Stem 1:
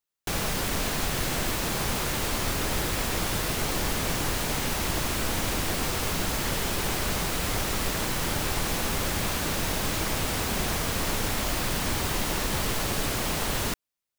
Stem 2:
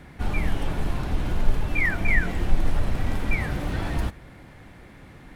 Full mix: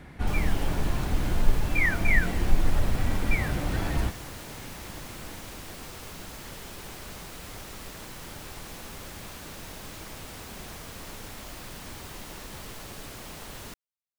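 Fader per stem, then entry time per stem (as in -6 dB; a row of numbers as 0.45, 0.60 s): -13.5, -1.0 dB; 0.00, 0.00 s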